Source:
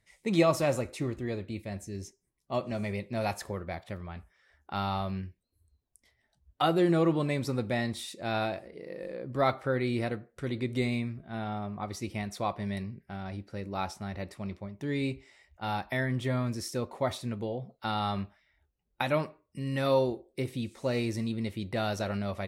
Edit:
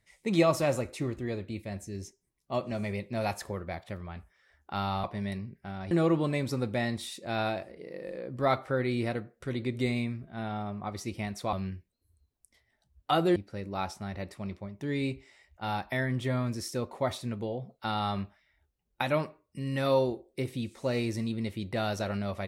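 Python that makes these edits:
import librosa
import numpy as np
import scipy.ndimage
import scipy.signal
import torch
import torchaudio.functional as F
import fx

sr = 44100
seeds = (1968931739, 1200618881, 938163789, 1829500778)

y = fx.edit(x, sr, fx.swap(start_s=5.04, length_s=1.83, other_s=12.49, other_length_s=0.87), tone=tone)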